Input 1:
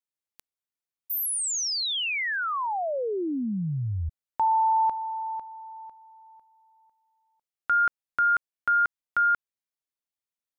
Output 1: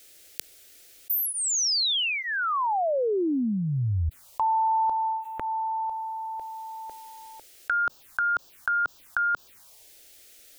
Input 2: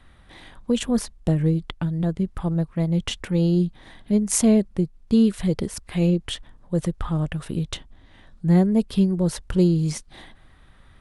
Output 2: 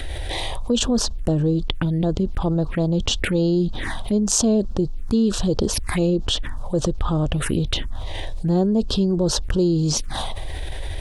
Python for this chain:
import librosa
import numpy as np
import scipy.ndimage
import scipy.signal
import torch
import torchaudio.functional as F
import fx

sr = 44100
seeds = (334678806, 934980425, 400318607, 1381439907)

y = fx.peak_eq(x, sr, hz=170.0, db=-8.0, octaves=0.69)
y = fx.env_phaser(y, sr, low_hz=170.0, high_hz=2100.0, full_db=-26.0)
y = fx.env_flatten(y, sr, amount_pct=70)
y = y * librosa.db_to_amplitude(1.0)